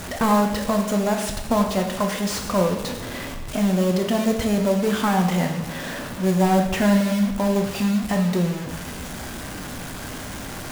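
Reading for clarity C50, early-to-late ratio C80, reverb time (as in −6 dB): 6.0 dB, 8.5 dB, 1.1 s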